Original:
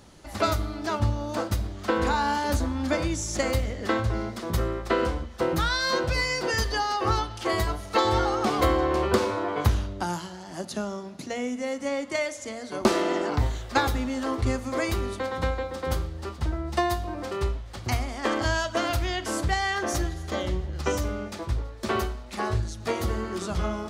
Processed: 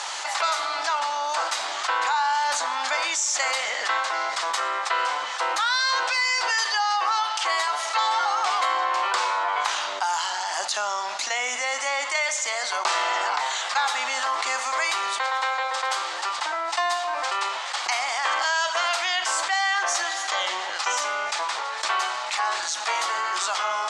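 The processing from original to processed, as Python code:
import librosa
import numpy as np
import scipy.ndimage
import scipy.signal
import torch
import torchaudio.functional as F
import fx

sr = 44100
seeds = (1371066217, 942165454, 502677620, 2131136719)

y = scipy.signal.sosfilt(scipy.signal.cheby1(3, 1.0, [840.0, 8000.0], 'bandpass', fs=sr, output='sos'), x)
y = fx.env_flatten(y, sr, amount_pct=70)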